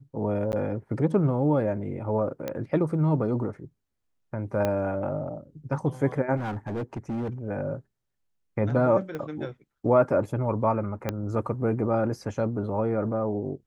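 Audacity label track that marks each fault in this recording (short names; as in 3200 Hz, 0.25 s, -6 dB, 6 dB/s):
0.520000	0.530000	gap 9.9 ms
2.480000	2.480000	pop -17 dBFS
4.650000	4.650000	pop -13 dBFS
6.360000	7.290000	clipped -27 dBFS
9.150000	9.150000	pop -22 dBFS
11.090000	11.090000	pop -13 dBFS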